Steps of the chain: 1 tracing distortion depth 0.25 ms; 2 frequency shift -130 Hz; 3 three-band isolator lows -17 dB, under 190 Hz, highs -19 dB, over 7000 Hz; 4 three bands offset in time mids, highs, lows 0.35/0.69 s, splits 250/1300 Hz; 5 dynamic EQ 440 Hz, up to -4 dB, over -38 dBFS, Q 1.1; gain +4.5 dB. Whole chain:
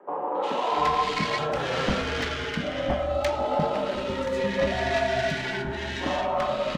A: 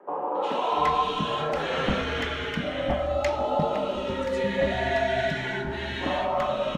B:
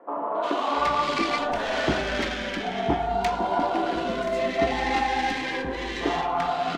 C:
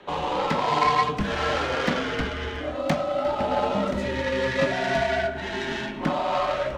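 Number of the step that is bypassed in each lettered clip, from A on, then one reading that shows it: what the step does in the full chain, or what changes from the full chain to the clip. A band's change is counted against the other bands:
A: 1, 8 kHz band -4.5 dB; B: 2, 125 Hz band -4.5 dB; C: 4, momentary loudness spread change +2 LU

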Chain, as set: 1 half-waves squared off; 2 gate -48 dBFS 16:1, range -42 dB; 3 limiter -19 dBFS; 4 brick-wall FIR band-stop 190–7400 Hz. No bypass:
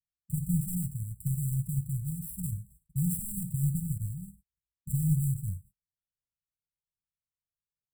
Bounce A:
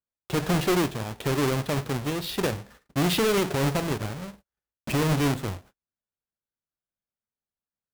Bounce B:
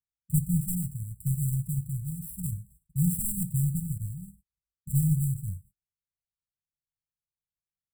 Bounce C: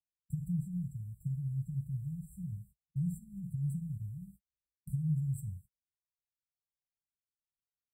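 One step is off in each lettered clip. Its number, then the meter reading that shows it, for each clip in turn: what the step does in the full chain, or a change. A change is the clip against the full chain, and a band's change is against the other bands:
4, crest factor change -7.5 dB; 3, crest factor change +4.0 dB; 1, distortion -5 dB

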